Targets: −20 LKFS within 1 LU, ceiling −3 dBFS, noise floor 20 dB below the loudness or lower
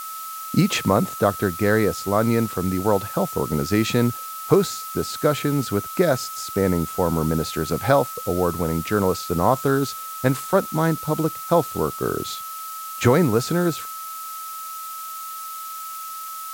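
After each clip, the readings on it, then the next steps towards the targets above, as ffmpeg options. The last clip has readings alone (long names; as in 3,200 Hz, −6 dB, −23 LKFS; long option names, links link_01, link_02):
interfering tone 1,300 Hz; level of the tone −32 dBFS; background noise floor −34 dBFS; target noise floor −43 dBFS; integrated loudness −23.0 LKFS; sample peak −4.0 dBFS; target loudness −20.0 LKFS
→ -af "bandreject=frequency=1300:width=30"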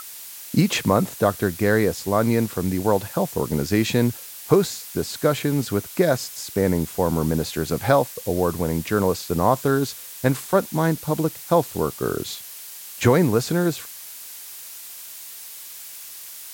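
interfering tone none found; background noise floor −39 dBFS; target noise floor −42 dBFS
→ -af "afftdn=noise_reduction=6:noise_floor=-39"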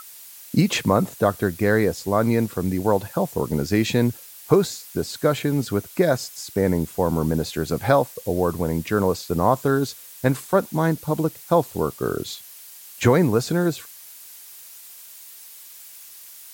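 background noise floor −43 dBFS; integrated loudness −22.5 LKFS; sample peak −4.0 dBFS; target loudness −20.0 LKFS
→ -af "volume=2.5dB,alimiter=limit=-3dB:level=0:latency=1"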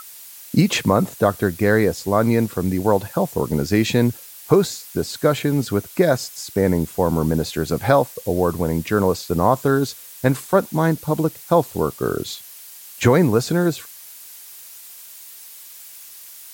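integrated loudness −20.0 LKFS; sample peak −3.0 dBFS; background noise floor −41 dBFS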